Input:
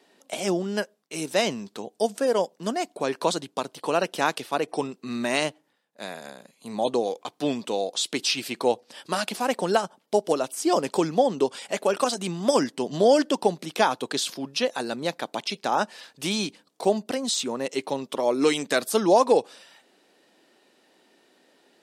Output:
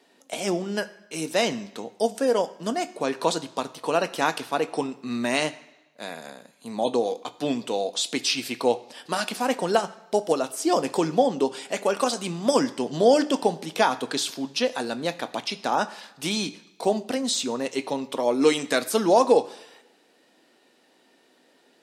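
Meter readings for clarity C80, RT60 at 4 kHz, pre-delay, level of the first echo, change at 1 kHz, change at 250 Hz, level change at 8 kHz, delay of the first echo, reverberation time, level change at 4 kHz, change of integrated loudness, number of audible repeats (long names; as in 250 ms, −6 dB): 18.5 dB, 0.95 s, 3 ms, no echo audible, +0.5 dB, +1.0 dB, +0.5 dB, no echo audible, 1.0 s, +0.5 dB, +0.5 dB, no echo audible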